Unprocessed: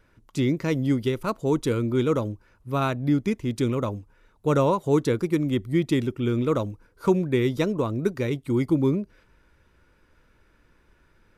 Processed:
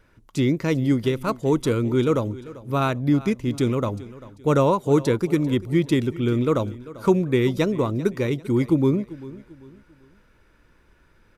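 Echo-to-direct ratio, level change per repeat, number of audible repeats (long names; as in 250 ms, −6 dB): −17.5 dB, −9.0 dB, 2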